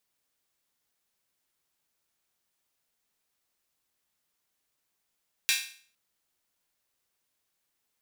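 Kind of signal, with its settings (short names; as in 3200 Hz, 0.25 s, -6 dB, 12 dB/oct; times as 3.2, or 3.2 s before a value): open hi-hat length 0.46 s, high-pass 2300 Hz, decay 0.47 s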